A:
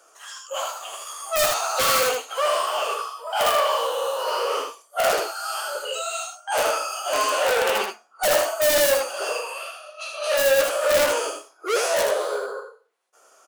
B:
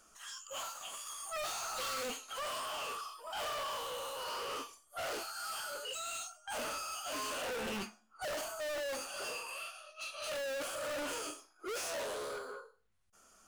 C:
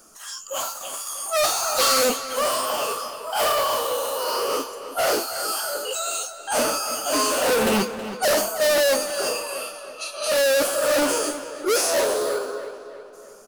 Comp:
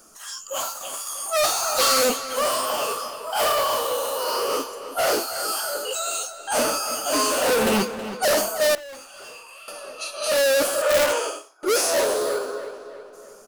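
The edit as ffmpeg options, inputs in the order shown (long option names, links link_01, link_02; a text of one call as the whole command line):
ffmpeg -i take0.wav -i take1.wav -i take2.wav -filter_complex "[2:a]asplit=3[link_01][link_02][link_03];[link_01]atrim=end=8.752[link_04];[1:a]atrim=start=8.748:end=9.682[link_05];[link_02]atrim=start=9.678:end=10.822[link_06];[0:a]atrim=start=10.818:end=11.632[link_07];[link_03]atrim=start=11.628[link_08];[link_04][link_05]acrossfade=duration=0.004:curve1=hsin:curve2=hsin[link_09];[link_09][link_06]acrossfade=duration=0.004:curve1=hsin:curve2=hsin[link_10];[link_10][link_07]acrossfade=duration=0.004:curve1=hsin:curve2=hsin[link_11];[link_11][link_08]acrossfade=duration=0.004:curve1=hsin:curve2=hsin" out.wav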